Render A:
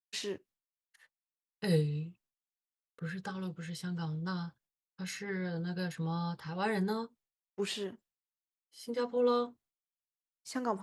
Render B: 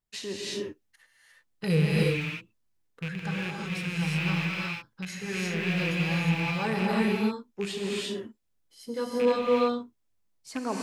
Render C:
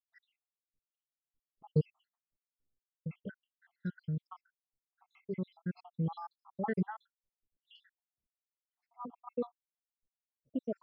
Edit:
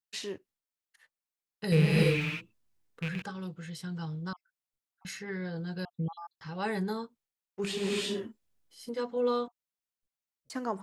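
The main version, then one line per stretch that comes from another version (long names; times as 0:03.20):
A
0:01.72–0:03.22: punch in from B
0:04.33–0:05.05: punch in from C
0:05.85–0:06.41: punch in from C
0:07.64–0:08.89: punch in from B
0:09.48–0:10.50: punch in from C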